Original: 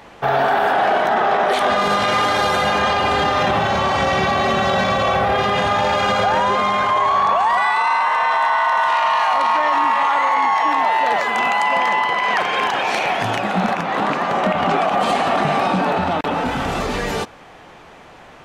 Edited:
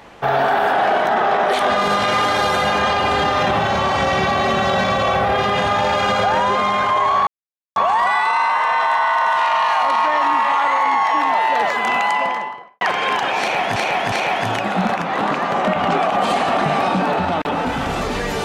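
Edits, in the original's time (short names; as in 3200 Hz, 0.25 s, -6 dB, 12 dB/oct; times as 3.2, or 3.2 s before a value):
7.27 insert silence 0.49 s
11.57–12.32 studio fade out
12.91–13.27 loop, 3 plays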